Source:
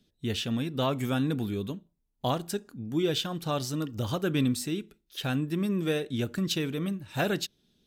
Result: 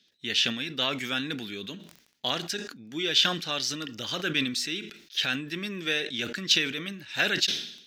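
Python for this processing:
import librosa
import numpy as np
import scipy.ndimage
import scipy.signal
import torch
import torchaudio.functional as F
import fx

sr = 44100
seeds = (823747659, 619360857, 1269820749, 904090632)

y = scipy.signal.sosfilt(scipy.signal.butter(2, 210.0, 'highpass', fs=sr, output='sos'), x)
y = fx.band_shelf(y, sr, hz=3100.0, db=15.0, octaves=2.4)
y = fx.dmg_crackle(y, sr, seeds[0], per_s=10.0, level_db=-49.0)
y = fx.sustainer(y, sr, db_per_s=82.0)
y = F.gain(torch.from_numpy(y), -5.5).numpy()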